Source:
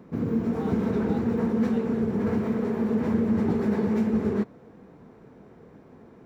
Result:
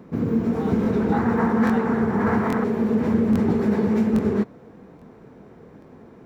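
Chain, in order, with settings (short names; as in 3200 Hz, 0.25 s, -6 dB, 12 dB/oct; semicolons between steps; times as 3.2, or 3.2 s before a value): 1.12–2.64 band shelf 1200 Hz +10 dB; crackling interface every 0.83 s, samples 1024, repeat, from 0.82; gain +4 dB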